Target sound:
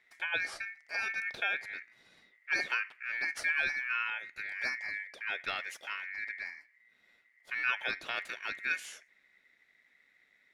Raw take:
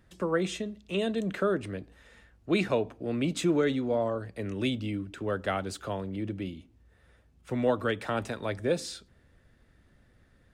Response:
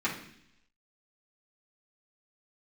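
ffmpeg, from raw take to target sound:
-af "aeval=exprs='val(0)*sin(2*PI*2000*n/s)':c=same,bass=f=250:g=-8,treble=f=4000:g=-2,volume=0.708"

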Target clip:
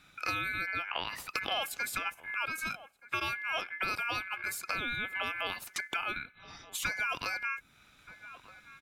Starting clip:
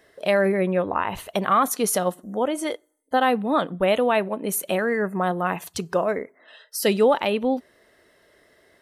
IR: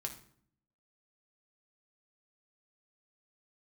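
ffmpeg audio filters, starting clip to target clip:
-filter_complex "[0:a]aeval=exprs='val(0)*sin(2*PI*1900*n/s)':c=same,asplit=2[s0][s1];[s1]adelay=1224,volume=0.0631,highshelf=f=4000:g=-27.6[s2];[s0][s2]amix=inputs=2:normalize=0,acrossover=split=620|7300[s3][s4][s5];[s3]acompressor=threshold=0.00708:ratio=4[s6];[s4]acompressor=threshold=0.02:ratio=4[s7];[s5]acompressor=threshold=0.00562:ratio=4[s8];[s6][s7][s8]amix=inputs=3:normalize=0"

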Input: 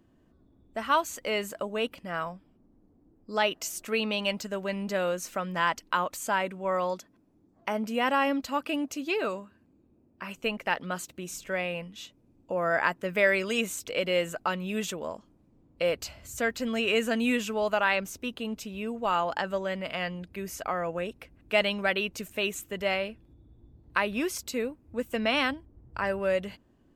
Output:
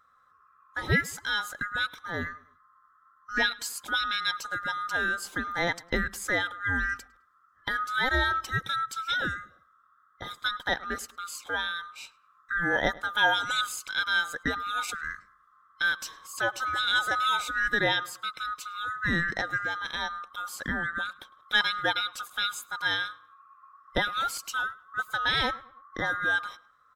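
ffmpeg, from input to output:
-filter_complex "[0:a]afftfilt=real='real(if(lt(b,960),b+48*(1-2*mod(floor(b/48),2)),b),0)':imag='imag(if(lt(b,960),b+48*(1-2*mod(floor(b/48),2)),b),0)':win_size=2048:overlap=0.75,asplit=2[s0][s1];[s1]adelay=105,lowpass=f=3000:p=1,volume=0.0891,asplit=2[s2][s3];[s3]adelay=105,lowpass=f=3000:p=1,volume=0.4,asplit=2[s4][s5];[s5]adelay=105,lowpass=f=3000:p=1,volume=0.4[s6];[s0][s2][s4][s6]amix=inputs=4:normalize=0"

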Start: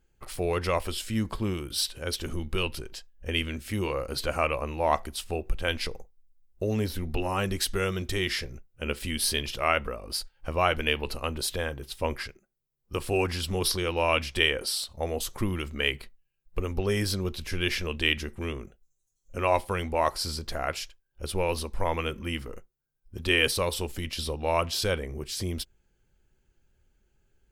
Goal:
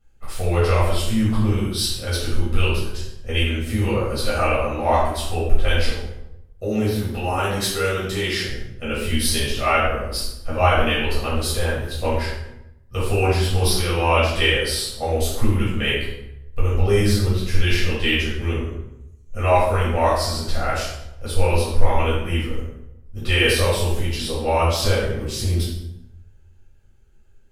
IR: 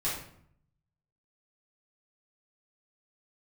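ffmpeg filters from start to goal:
-filter_complex "[0:a]asettb=1/sr,asplit=3[s0][s1][s2];[s0]atrim=end=5.904[s3];[s1]atrim=start=5.9:end=8.47,asetpts=PTS-STARTPTS,afade=t=in:d=0.004:c=qsin,afade=t=out:st=2.566:d=0.004:c=qsin,highpass=f=190:p=1[s4];[s2]atrim=start=8.466[s5];[s3][s4]acrossfade=d=0.004:c1=hsin:c2=qsin[s6];[s6][s5]acrossfade=d=0.004:c1=qsin:c2=hsin[s7];[1:a]atrim=start_sample=2205,asetrate=31311,aresample=44100[s8];[s7][s8]afir=irnorm=-1:irlink=0,volume=0.794"

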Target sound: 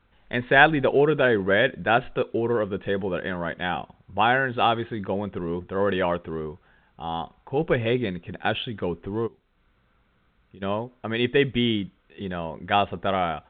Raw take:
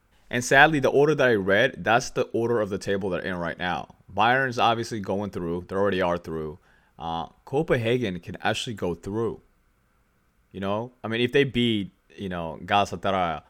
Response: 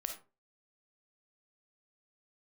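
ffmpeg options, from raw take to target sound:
-filter_complex "[0:a]asplit=3[s0][s1][s2];[s0]afade=t=out:st=9.26:d=0.02[s3];[s1]acompressor=threshold=0.00631:ratio=16,afade=t=in:st=9.26:d=0.02,afade=t=out:st=10.61:d=0.02[s4];[s2]afade=t=in:st=10.61:d=0.02[s5];[s3][s4][s5]amix=inputs=3:normalize=0" -ar 8000 -c:a pcm_alaw

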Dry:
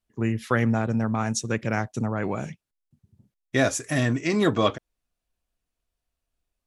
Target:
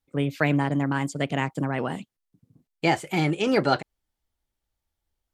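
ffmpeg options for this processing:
-filter_complex "[0:a]asetrate=55125,aresample=44100,acrossover=split=5800[s0][s1];[s1]acompressor=threshold=0.00251:ratio=4:attack=1:release=60[s2];[s0][s2]amix=inputs=2:normalize=0"

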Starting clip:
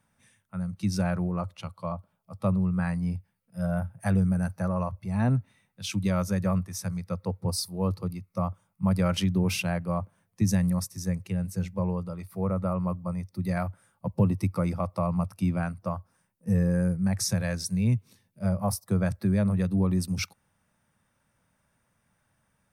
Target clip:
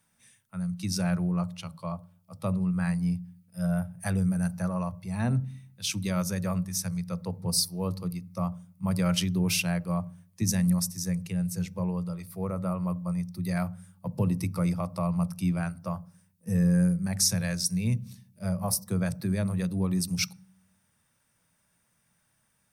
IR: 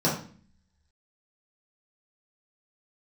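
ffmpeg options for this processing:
-filter_complex "[0:a]highshelf=f=2400:g=12,asplit=2[s0][s1];[1:a]atrim=start_sample=2205,lowshelf=f=380:g=11[s2];[s1][s2]afir=irnorm=-1:irlink=0,volume=0.0211[s3];[s0][s3]amix=inputs=2:normalize=0,volume=0.562"

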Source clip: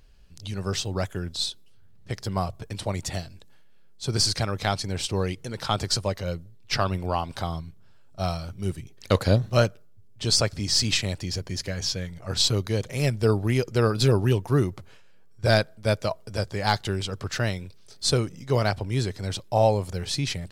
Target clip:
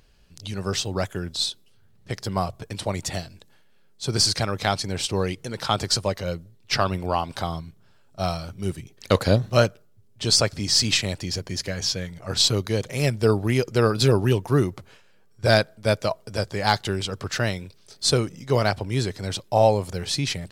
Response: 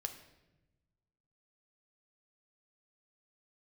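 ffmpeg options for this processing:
-af "lowshelf=f=71:g=-10,volume=1.41"

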